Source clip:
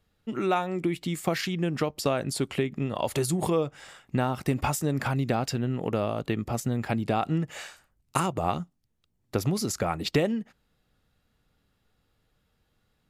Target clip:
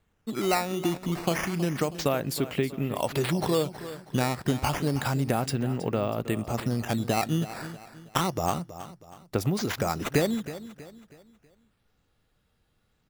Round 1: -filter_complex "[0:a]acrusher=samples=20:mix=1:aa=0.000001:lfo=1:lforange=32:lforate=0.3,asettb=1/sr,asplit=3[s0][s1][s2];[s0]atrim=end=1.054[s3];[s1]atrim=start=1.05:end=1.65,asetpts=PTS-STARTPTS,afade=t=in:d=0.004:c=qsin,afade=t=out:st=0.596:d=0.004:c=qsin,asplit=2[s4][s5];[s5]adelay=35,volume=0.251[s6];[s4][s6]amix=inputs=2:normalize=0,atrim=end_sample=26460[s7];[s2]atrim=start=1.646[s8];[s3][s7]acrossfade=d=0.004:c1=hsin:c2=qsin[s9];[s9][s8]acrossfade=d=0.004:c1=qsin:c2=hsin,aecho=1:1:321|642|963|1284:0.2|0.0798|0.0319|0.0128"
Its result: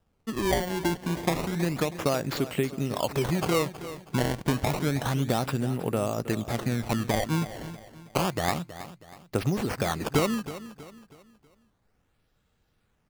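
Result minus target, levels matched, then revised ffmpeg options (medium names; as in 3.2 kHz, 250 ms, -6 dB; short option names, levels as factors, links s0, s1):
decimation with a swept rate: distortion +6 dB
-filter_complex "[0:a]acrusher=samples=8:mix=1:aa=0.000001:lfo=1:lforange=12.8:lforate=0.3,asettb=1/sr,asplit=3[s0][s1][s2];[s0]atrim=end=1.054[s3];[s1]atrim=start=1.05:end=1.65,asetpts=PTS-STARTPTS,afade=t=in:d=0.004:c=qsin,afade=t=out:st=0.596:d=0.004:c=qsin,asplit=2[s4][s5];[s5]adelay=35,volume=0.251[s6];[s4][s6]amix=inputs=2:normalize=0,atrim=end_sample=26460[s7];[s2]atrim=start=1.646[s8];[s3][s7]acrossfade=d=0.004:c1=hsin:c2=qsin[s9];[s9][s8]acrossfade=d=0.004:c1=qsin:c2=hsin,aecho=1:1:321|642|963|1284:0.2|0.0798|0.0319|0.0128"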